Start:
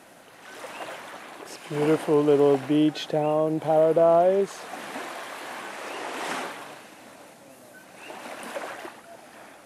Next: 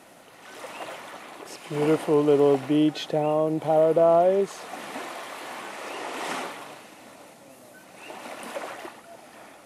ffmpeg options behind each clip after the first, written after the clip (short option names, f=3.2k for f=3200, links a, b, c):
-af "bandreject=f=1.6k:w=11"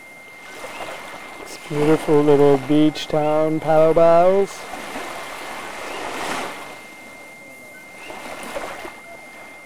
-af "aeval=exprs='if(lt(val(0),0),0.447*val(0),val(0))':c=same,aeval=exprs='val(0)+0.00398*sin(2*PI*2100*n/s)':c=same,volume=8dB"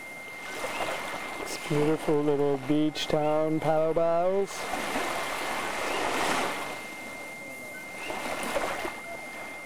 -af "acompressor=threshold=-21dB:ratio=10"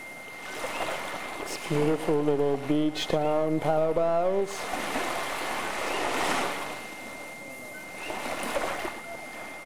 -af "aecho=1:1:115:0.178"